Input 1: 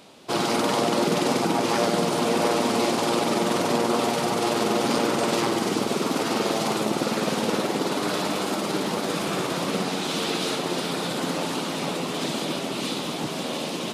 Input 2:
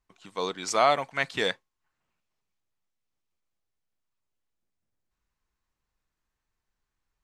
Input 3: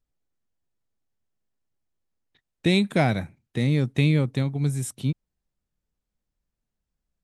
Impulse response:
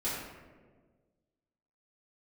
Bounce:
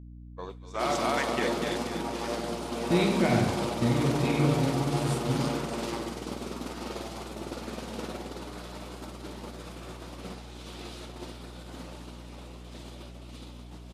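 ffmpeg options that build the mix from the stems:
-filter_complex "[0:a]adelay=500,volume=-10dB,asplit=2[a][b];[b]volume=-14dB[c];[1:a]volume=-2dB,asplit=3[d][e][f];[e]volume=-18dB[g];[f]volume=-7.5dB[h];[2:a]adelay=250,volume=-1dB,asplit=2[i][j];[j]volume=-11.5dB[k];[d][i]amix=inputs=2:normalize=0,afwtdn=0.0316,acompressor=threshold=-28dB:ratio=6,volume=0dB[l];[3:a]atrim=start_sample=2205[m];[c][g][k]amix=inputs=3:normalize=0[n];[n][m]afir=irnorm=-1:irlink=0[o];[h]aecho=0:1:247|494|741|988|1235|1482|1729|1976:1|0.54|0.292|0.157|0.085|0.0459|0.0248|0.0134[p];[a][l][o][p]amix=inputs=4:normalize=0,agate=range=-33dB:threshold=-27dB:ratio=3:detection=peak,aeval=exprs='val(0)+0.00631*(sin(2*PI*60*n/s)+sin(2*PI*2*60*n/s)/2+sin(2*PI*3*60*n/s)/3+sin(2*PI*4*60*n/s)/4+sin(2*PI*5*60*n/s)/5)':c=same"

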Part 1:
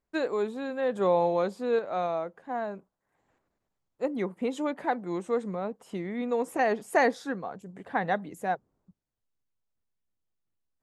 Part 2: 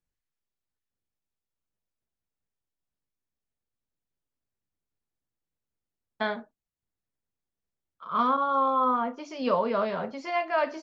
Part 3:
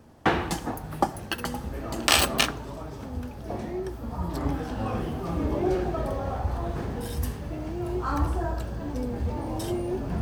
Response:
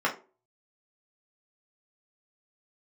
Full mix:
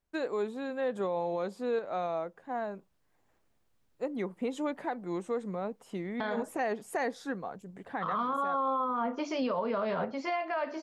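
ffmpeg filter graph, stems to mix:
-filter_complex "[0:a]volume=-2.5dB[a];[1:a]dynaudnorm=f=400:g=13:m=16dB,volume=1.5dB,highshelf=f=4.1k:g=-7,acompressor=threshold=-18dB:ratio=6,volume=0dB[b];[a][b]amix=inputs=2:normalize=0,alimiter=limit=-23.5dB:level=0:latency=1:release=159"

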